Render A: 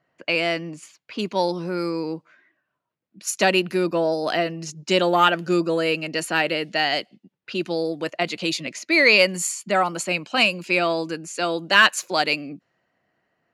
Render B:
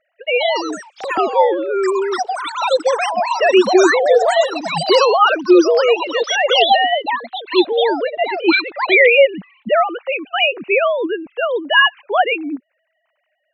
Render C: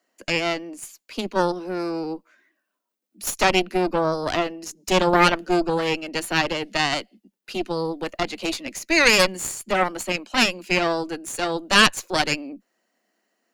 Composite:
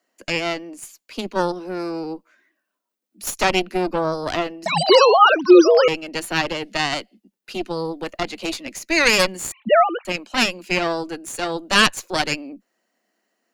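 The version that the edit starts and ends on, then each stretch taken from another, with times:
C
4.66–5.88 s: from B
9.52–10.05 s: from B
not used: A

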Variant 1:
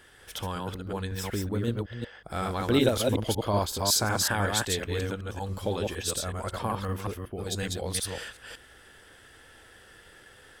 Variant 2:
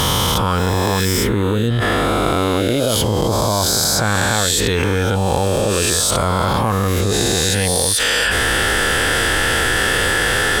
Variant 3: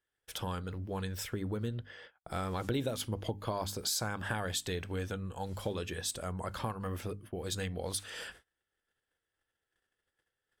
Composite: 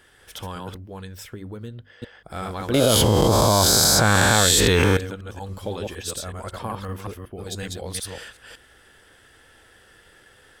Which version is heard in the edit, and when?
1
0.77–2.02 s: from 3
2.74–4.97 s: from 2

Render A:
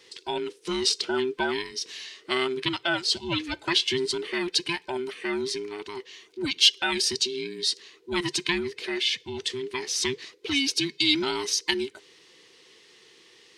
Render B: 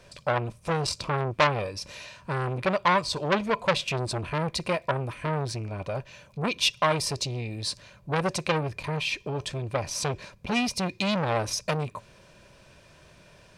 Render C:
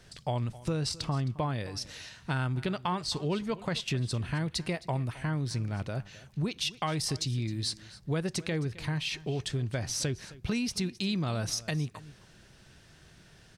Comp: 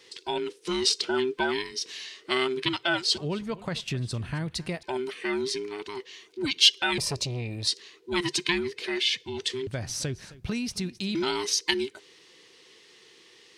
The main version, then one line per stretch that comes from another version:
A
3.18–4.83 s: from C
6.98–7.67 s: from B
9.67–11.15 s: from C

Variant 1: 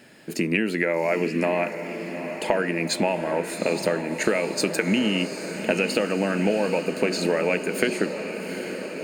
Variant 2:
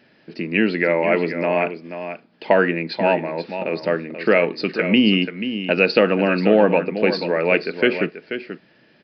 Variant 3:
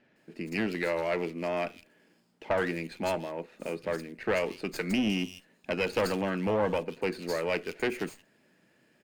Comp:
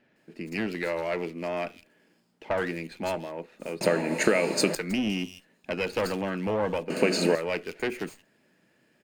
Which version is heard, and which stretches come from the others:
3
3.81–4.75 s: from 1
6.90–7.35 s: from 1
not used: 2

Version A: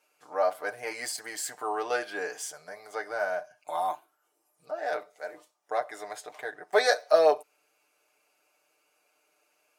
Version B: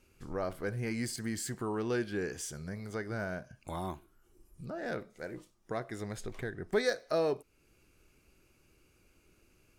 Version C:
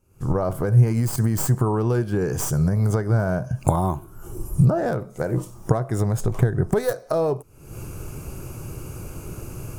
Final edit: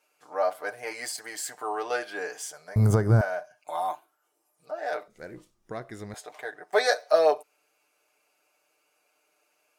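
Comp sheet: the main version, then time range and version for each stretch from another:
A
2.76–3.21 s: from C
5.08–6.14 s: from B

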